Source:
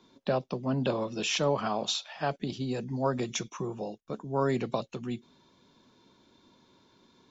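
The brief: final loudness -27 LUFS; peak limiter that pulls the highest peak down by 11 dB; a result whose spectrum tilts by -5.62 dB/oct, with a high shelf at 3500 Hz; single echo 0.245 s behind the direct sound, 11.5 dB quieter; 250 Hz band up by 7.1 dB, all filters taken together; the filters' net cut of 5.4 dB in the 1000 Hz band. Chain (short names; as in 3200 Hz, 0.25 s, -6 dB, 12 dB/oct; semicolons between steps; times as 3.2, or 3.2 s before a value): bell 250 Hz +8.5 dB; bell 1000 Hz -7.5 dB; high shelf 3500 Hz -6 dB; limiter -24.5 dBFS; echo 0.245 s -11.5 dB; gain +6.5 dB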